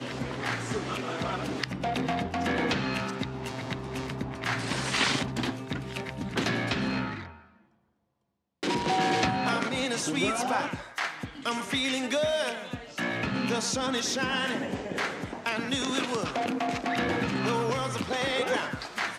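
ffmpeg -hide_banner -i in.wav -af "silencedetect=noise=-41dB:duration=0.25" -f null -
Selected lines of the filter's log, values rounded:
silence_start: 7.38
silence_end: 8.63 | silence_duration: 1.25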